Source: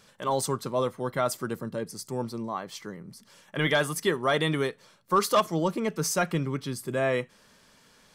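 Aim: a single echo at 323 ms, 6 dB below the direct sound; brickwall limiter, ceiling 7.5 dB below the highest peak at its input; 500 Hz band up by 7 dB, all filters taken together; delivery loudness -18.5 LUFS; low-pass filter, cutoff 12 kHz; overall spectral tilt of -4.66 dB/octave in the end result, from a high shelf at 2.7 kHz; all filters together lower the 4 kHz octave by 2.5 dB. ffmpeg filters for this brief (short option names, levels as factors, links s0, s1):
-af "lowpass=12000,equalizer=f=500:t=o:g=8.5,highshelf=f=2700:g=6,equalizer=f=4000:t=o:g=-8.5,alimiter=limit=0.2:level=0:latency=1,aecho=1:1:323:0.501,volume=2.11"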